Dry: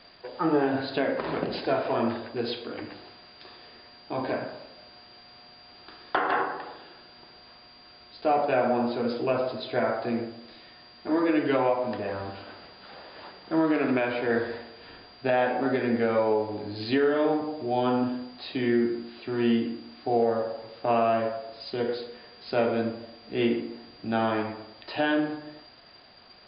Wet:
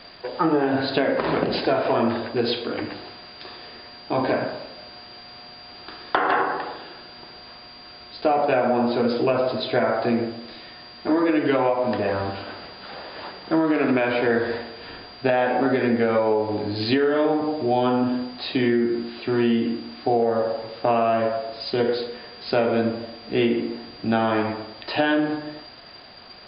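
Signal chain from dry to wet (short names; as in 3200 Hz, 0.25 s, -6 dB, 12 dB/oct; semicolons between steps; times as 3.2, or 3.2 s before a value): compressor, threshold -25 dBFS, peak gain reduction 6.5 dB; gain +8.5 dB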